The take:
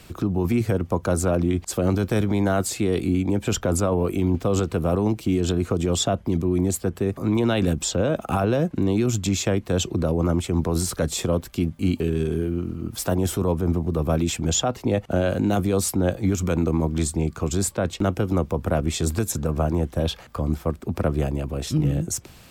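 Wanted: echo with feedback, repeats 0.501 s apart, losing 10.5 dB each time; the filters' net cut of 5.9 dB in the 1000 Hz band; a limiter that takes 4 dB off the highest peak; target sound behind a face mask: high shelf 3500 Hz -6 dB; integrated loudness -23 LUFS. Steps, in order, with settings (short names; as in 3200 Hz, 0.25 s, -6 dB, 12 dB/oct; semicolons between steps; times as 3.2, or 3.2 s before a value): bell 1000 Hz -8.5 dB; limiter -15.5 dBFS; high shelf 3500 Hz -6 dB; feedback echo 0.501 s, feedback 30%, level -10.5 dB; gain +3.5 dB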